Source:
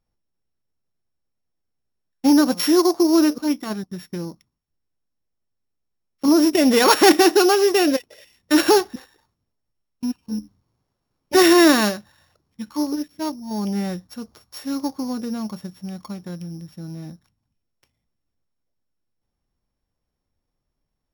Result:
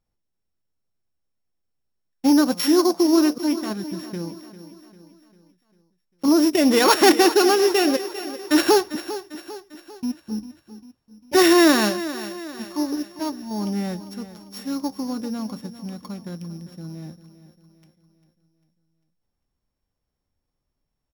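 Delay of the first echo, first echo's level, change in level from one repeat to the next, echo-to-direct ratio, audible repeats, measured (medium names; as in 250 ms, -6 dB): 398 ms, -14.0 dB, -6.0 dB, -13.0 dB, 4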